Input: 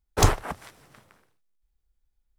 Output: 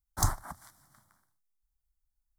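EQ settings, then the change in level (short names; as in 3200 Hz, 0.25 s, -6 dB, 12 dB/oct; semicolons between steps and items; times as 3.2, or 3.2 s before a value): dynamic EQ 2900 Hz, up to -6 dB, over -45 dBFS, Q 1.9; high shelf 5400 Hz +9 dB; fixed phaser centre 1100 Hz, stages 4; -8.0 dB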